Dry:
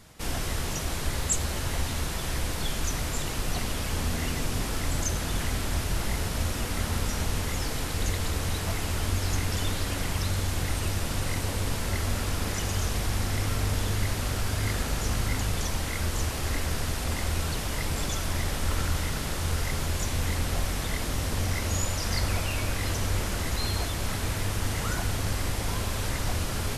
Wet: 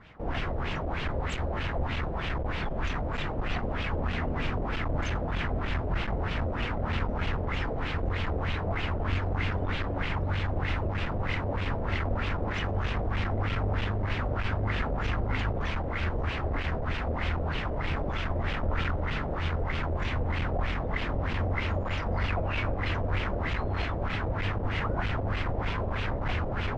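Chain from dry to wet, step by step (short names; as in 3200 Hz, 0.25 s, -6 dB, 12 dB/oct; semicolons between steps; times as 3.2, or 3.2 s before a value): air absorption 65 m; one-sided clip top -26.5 dBFS; LFO low-pass sine 3.2 Hz 570–2900 Hz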